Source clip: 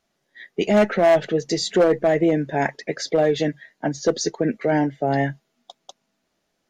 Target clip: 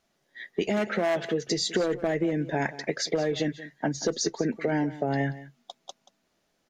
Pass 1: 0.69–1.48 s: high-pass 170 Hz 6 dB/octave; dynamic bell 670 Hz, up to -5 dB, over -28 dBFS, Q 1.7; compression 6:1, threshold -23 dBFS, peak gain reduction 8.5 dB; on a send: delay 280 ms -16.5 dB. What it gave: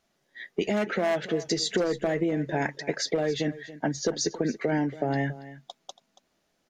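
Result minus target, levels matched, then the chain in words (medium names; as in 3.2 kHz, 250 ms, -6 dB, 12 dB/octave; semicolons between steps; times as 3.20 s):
echo 99 ms late
0.69–1.48 s: high-pass 170 Hz 6 dB/octave; dynamic bell 670 Hz, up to -5 dB, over -28 dBFS, Q 1.7; compression 6:1, threshold -23 dBFS, peak gain reduction 8.5 dB; on a send: delay 181 ms -16.5 dB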